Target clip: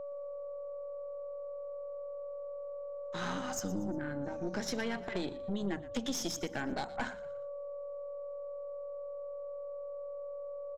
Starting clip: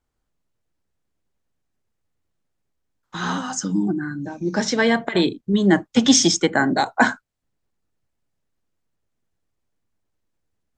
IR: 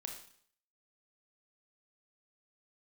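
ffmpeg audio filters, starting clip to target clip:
-filter_complex "[0:a]aeval=exprs='val(0)+0.0355*sin(2*PI*570*n/s)':c=same,acompressor=threshold=0.0794:ratio=6,aeval=exprs='(tanh(11.2*val(0)+0.65)-tanh(0.65))/11.2':c=same,asplit=2[s0][s1];[s1]asplit=3[s2][s3][s4];[s2]adelay=118,afreqshift=-44,volume=0.15[s5];[s3]adelay=236,afreqshift=-88,volume=0.0582[s6];[s4]adelay=354,afreqshift=-132,volume=0.0226[s7];[s5][s6][s7]amix=inputs=3:normalize=0[s8];[s0][s8]amix=inputs=2:normalize=0,volume=0.447"

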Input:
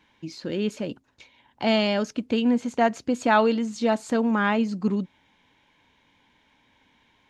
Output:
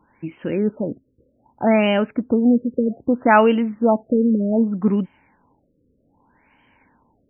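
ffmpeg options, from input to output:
-filter_complex "[0:a]asettb=1/sr,asplit=3[s0][s1][s2];[s0]atrim=end=0.594[s3];[s1]atrim=start=0.59:end=1.67,asetpts=PTS-STARTPTS,afade=t=in:d=0.004:c=qsin,afade=t=out:st=1.076:d=0.004:c=qsin,asuperstop=centerf=1100:order=4:qfactor=6[s4];[s2]atrim=start=1.666[s5];[s3][s4]acrossfade=d=0.004:c1=hsin:c2=qsin[s6];[s6][s5]acrossfade=d=0.004:c1=qsin:c2=hsin,afftfilt=real='re*lt(b*sr/1024,550*pow(3200/550,0.5+0.5*sin(2*PI*0.64*pts/sr)))':imag='im*lt(b*sr/1024,550*pow(3200/550,0.5+0.5*sin(2*PI*0.64*pts/sr)))':win_size=1024:overlap=0.75,volume=2"

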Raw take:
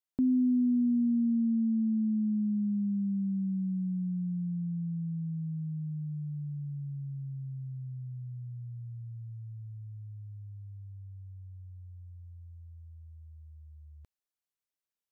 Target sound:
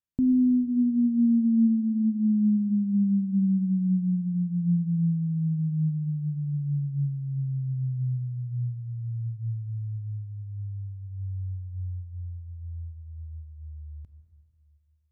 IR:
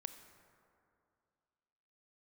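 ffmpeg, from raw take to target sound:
-filter_complex "[0:a]bass=f=250:g=15,treble=f=4000:g=-3[s0];[1:a]atrim=start_sample=2205[s1];[s0][s1]afir=irnorm=-1:irlink=0"

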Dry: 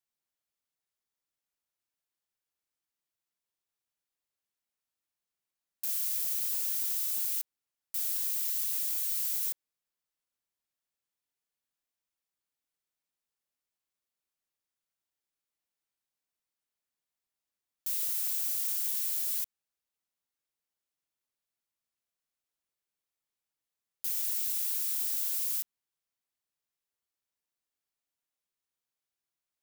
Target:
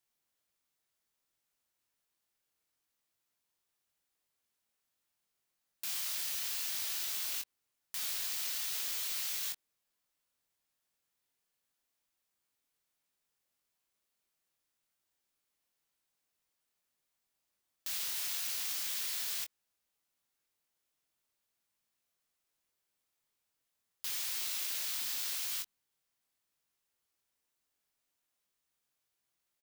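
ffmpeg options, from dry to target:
-filter_complex "[0:a]acrossover=split=5400[s0][s1];[s1]acompressor=threshold=0.00562:ratio=4:attack=1:release=60[s2];[s0][s2]amix=inputs=2:normalize=0,asplit=2[s3][s4];[s4]acrusher=bits=6:mix=0:aa=0.000001,volume=0.282[s5];[s3][s5]amix=inputs=2:normalize=0,asplit=2[s6][s7];[s7]adelay=22,volume=0.473[s8];[s6][s8]amix=inputs=2:normalize=0,volume=1.78"

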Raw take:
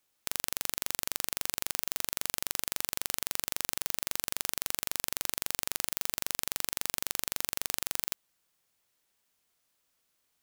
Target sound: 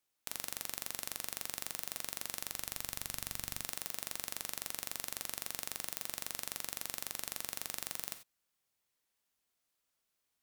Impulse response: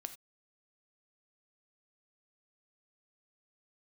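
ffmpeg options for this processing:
-filter_complex "[0:a]asettb=1/sr,asplit=3[s0][s1][s2];[s0]atrim=end=2.374[s3];[s1]atrim=start=2.37:end=3.61,asetpts=PTS-STARTPTS,afade=t=in:d=0.004:c=qsin,afade=t=out:st=1.236:d=0.004:c=qsin,asubboost=boost=9.5:cutoff=200[s4];[s2]atrim=start=3.606[s5];[s3][s4]acrossfade=d=0.004:c1=hsin:c2=qsin[s6];[s6][s5]acrossfade=d=0.004:c1=qsin:c2=hsin[s7];[1:a]atrim=start_sample=2205,asetrate=41895,aresample=44100[s8];[s7][s8]afir=irnorm=-1:irlink=0,volume=0.631"

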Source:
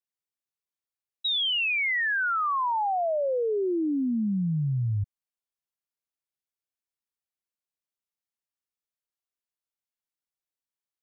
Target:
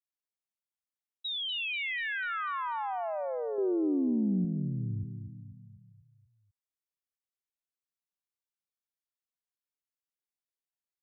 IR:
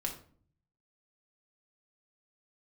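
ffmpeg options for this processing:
-filter_complex "[0:a]asettb=1/sr,asplit=3[s0][s1][s2];[s0]atrim=end=3.584[s3];[s1]atrim=start=3.58:end=4.45,asetpts=PTS-STARTPTS,afade=t=in:d=0.004:c=qsin,afade=t=out:st=0.866:d=0.004:c=qsin,acontrast=55[s4];[s2]atrim=start=4.446[s5];[s3][s4]acrossfade=d=0.004:c1=hsin:c2=qsin[s6];[s6][s5]acrossfade=d=0.004:c1=qsin:c2=hsin,aecho=1:1:245|490|735|980|1225|1470:0.398|0.211|0.112|0.0593|0.0314|0.0166,volume=0.376"

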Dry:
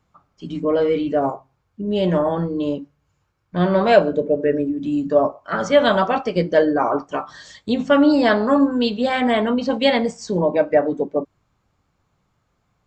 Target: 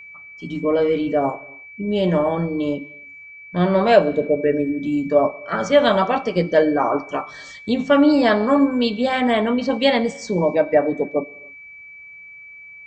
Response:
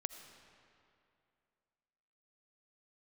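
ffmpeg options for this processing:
-filter_complex "[0:a]bandreject=f=1500:w=27,aeval=exprs='val(0)+0.0126*sin(2*PI*2300*n/s)':c=same,asplit=2[s0][s1];[1:a]atrim=start_sample=2205,afade=t=out:st=0.36:d=0.01,atrim=end_sample=16317[s2];[s1][s2]afir=irnorm=-1:irlink=0,volume=0.422[s3];[s0][s3]amix=inputs=2:normalize=0,volume=0.75"

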